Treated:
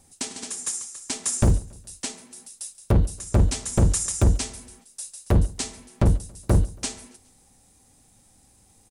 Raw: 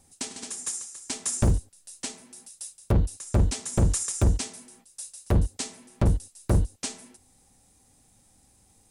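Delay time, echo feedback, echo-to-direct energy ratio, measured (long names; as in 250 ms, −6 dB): 139 ms, 49%, −22.0 dB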